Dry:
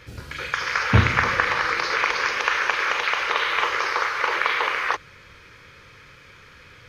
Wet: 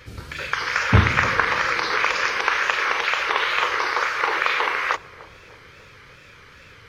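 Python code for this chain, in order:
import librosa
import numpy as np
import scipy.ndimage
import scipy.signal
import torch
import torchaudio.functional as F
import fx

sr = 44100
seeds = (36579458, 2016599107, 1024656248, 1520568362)

y = fx.wow_flutter(x, sr, seeds[0], rate_hz=2.1, depth_cents=110.0)
y = fx.echo_banded(y, sr, ms=299, feedback_pct=66, hz=400.0, wet_db=-16)
y = y * librosa.db_to_amplitude(1.0)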